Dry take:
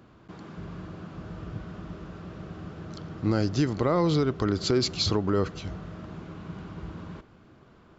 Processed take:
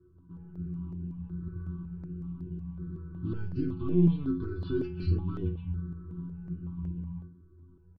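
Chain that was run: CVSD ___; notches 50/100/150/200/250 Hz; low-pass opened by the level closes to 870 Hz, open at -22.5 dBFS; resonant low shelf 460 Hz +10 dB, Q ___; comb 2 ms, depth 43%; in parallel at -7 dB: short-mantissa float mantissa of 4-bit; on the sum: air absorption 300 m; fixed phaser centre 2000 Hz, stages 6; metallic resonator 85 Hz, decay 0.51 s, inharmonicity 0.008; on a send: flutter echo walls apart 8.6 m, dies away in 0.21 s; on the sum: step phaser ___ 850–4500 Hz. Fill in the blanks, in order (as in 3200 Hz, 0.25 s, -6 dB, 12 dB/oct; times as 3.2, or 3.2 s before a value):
32 kbps, 3, 5.4 Hz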